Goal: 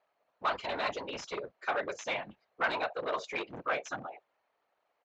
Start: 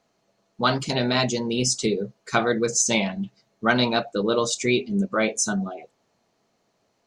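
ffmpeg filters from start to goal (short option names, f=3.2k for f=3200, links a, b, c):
-filter_complex "[0:a]atempo=1.4,afftfilt=real='hypot(re,im)*cos(2*PI*random(0))':imag='hypot(re,im)*sin(2*PI*random(1))':win_size=512:overlap=0.75,aresample=16000,asoftclip=type=hard:threshold=-25.5dB,aresample=44100,acrossover=split=540 3000:gain=0.0794 1 0.0631[a][b][c];[a][b][c]amix=inputs=3:normalize=0,volume=3dB"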